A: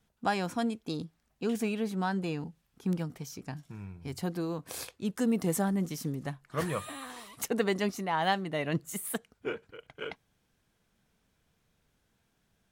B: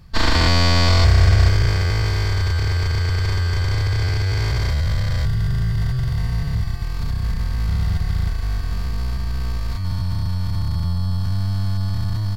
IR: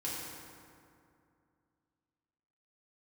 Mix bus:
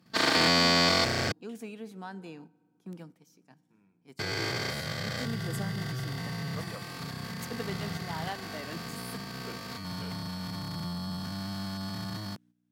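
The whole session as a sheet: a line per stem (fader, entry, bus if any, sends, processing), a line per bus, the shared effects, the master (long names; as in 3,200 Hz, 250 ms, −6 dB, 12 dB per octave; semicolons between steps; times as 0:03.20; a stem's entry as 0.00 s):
−10.5 dB, 0.00 s, send −19.5 dB, mains hum 60 Hz, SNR 13 dB
−2.5 dB, 0.00 s, muted 0:01.32–0:04.19, no send, asymmetric clip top −12 dBFS, bottom −7.5 dBFS; notch filter 990 Hz, Q 9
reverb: on, RT60 2.4 s, pre-delay 3 ms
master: noise gate −46 dBFS, range −9 dB; high-pass filter 170 Hz 24 dB per octave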